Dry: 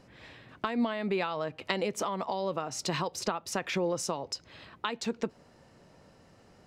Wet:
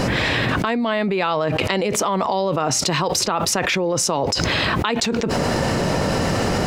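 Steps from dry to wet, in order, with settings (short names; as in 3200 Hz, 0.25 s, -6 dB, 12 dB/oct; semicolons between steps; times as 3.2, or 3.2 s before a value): fast leveller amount 100%; gain +4.5 dB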